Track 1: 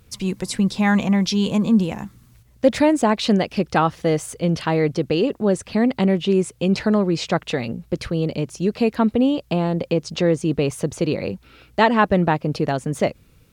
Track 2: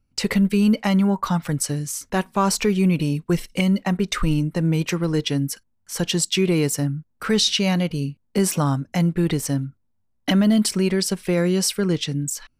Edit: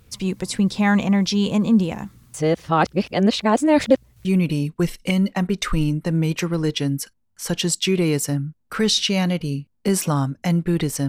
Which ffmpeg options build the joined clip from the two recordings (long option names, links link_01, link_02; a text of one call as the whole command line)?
ffmpeg -i cue0.wav -i cue1.wav -filter_complex "[0:a]apad=whole_dur=11.08,atrim=end=11.08,asplit=2[link_01][link_02];[link_01]atrim=end=2.342[link_03];[link_02]atrim=start=2.338:end=4.252,asetpts=PTS-STARTPTS,areverse[link_04];[1:a]atrim=start=2.748:end=9.58[link_05];[link_03][link_04]acrossfade=duration=0.004:curve1=hsin:curve2=hsin[link_06];[link_06][link_05]acrossfade=duration=0.004:curve1=hsin:curve2=hsin" out.wav